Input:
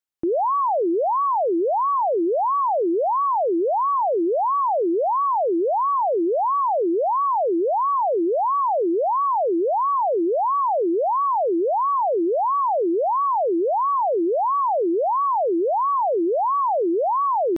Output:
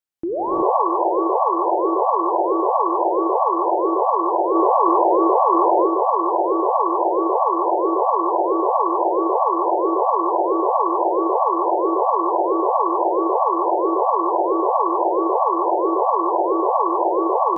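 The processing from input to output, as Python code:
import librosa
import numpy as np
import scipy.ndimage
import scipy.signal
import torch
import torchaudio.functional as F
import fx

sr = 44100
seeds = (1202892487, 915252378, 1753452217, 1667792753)

y = fx.rider(x, sr, range_db=10, speed_s=0.5)
y = fx.rev_gated(y, sr, seeds[0], gate_ms=400, shape='rising', drr_db=-6.0)
y = fx.env_flatten(y, sr, amount_pct=100, at=(4.54, 5.86), fade=0.02)
y = F.gain(torch.from_numpy(y), -5.0).numpy()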